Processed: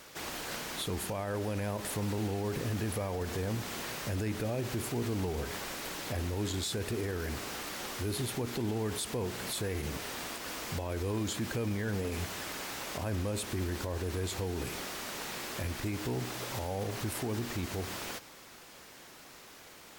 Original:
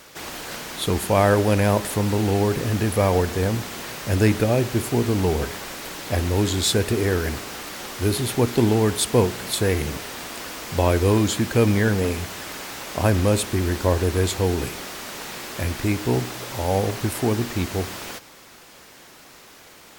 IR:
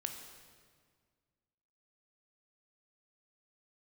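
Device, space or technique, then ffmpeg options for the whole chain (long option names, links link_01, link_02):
stacked limiters: -af "alimiter=limit=-10dB:level=0:latency=1:release=315,alimiter=limit=-16dB:level=0:latency=1:release=25,alimiter=limit=-20.5dB:level=0:latency=1:release=107,volume=-5.5dB"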